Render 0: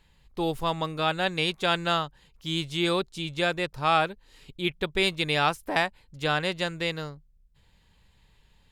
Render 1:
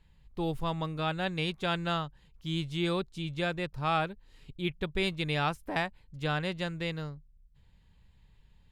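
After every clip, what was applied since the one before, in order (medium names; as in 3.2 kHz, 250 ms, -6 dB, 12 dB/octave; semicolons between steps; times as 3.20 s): tone controls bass +8 dB, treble -4 dB; trim -6.5 dB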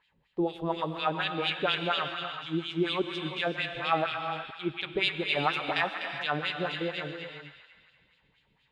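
feedback echo behind a high-pass 124 ms, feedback 66%, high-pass 1.5 kHz, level -4.5 dB; wah-wah 4.2 Hz 290–3300 Hz, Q 2; gated-style reverb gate 410 ms rising, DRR 7 dB; trim +8.5 dB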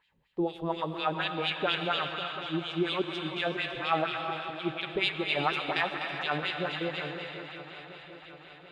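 shuffle delay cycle 736 ms, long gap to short 3:1, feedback 55%, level -13 dB; trim -1 dB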